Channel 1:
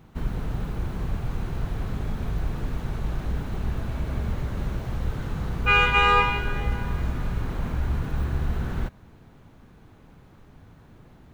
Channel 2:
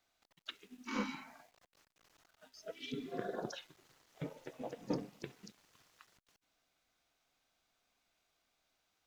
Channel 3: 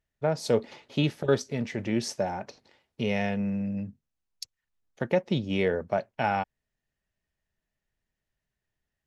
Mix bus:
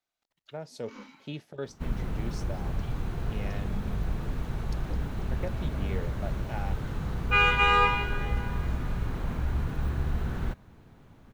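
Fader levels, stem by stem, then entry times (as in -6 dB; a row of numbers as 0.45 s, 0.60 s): -3.0 dB, -9.5 dB, -13.0 dB; 1.65 s, 0.00 s, 0.30 s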